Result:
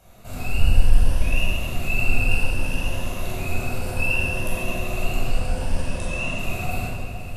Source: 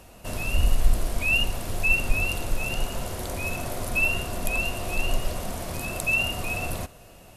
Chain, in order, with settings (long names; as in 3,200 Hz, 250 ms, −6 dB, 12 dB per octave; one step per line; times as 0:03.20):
rippled gain that drifts along the octave scale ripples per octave 1.2, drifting +0.63 Hz, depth 7 dB
0:05.25–0:06.39: Butterworth low-pass 10,000 Hz 96 dB per octave
feedback delay with all-pass diffusion 564 ms, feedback 45%, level −11.5 dB
convolution reverb RT60 1.8 s, pre-delay 15 ms, DRR −8 dB
level −11 dB